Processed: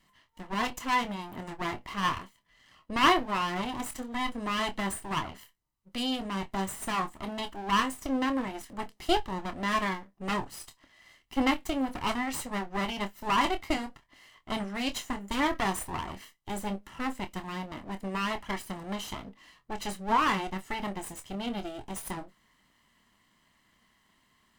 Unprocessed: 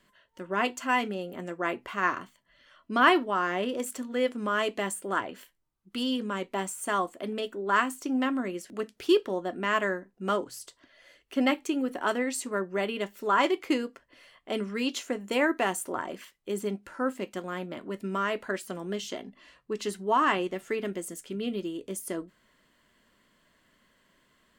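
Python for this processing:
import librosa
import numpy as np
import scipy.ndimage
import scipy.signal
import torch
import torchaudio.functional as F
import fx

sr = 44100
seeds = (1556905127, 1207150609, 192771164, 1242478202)

y = fx.lower_of_two(x, sr, delay_ms=0.99)
y = fx.doubler(y, sr, ms=26.0, db=-10)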